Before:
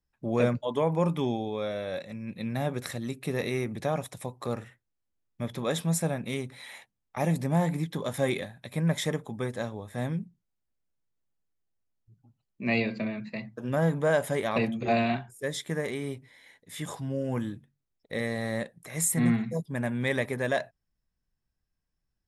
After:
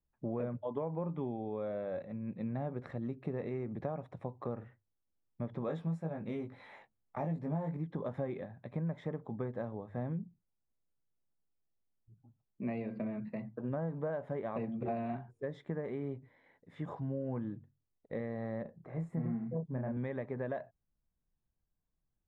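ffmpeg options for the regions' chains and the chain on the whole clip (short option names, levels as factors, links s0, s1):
-filter_complex "[0:a]asettb=1/sr,asplit=3[s0][s1][s2];[s0]atrim=end=5.664[s3];[s1]atrim=start=5.66:end=7.77,asetpts=PTS-STARTPTS,afade=t=in:d=0.004:c=qsin,afade=t=out:st=2.106:d=0.004:c=qsin,highshelf=f=4000:g=8.5,asplit=2[s4][s5];[s5]adelay=19,volume=0.631[s6];[s4][s6]amix=inputs=2:normalize=0,atrim=end_sample=93051[s7];[s2]atrim=start=7.766[s8];[s3][s7]acrossfade=d=0.004:c1=hsin:c2=qsin[s9];[s9][s8]acrossfade=d=0.004:c1=qsin:c2=hsin,asettb=1/sr,asplit=3[s10][s11][s12];[s10]atrim=end=18.624[s13];[s11]atrim=start=18.62:end=19.97,asetpts=PTS-STARTPTS,afade=t=in:d=0.004:c=qsin,afade=t=out:st=1.346:d=0.004:c=qsin,highshelf=f=2000:g=-12,asplit=2[s14][s15];[s15]adelay=31,volume=0.668[s16];[s14][s16]amix=inputs=2:normalize=0,atrim=end_sample=59535[s17];[s12]atrim=start=19.966[s18];[s13][s17]acrossfade=d=0.004:c1=hsin:c2=qsin[s19];[s19][s18]acrossfade=d=0.004:c1=qsin:c2=hsin,acompressor=threshold=0.0282:ratio=6,lowpass=1100,bandreject=f=50:t=h:w=6,bandreject=f=100:t=h:w=6,volume=0.794"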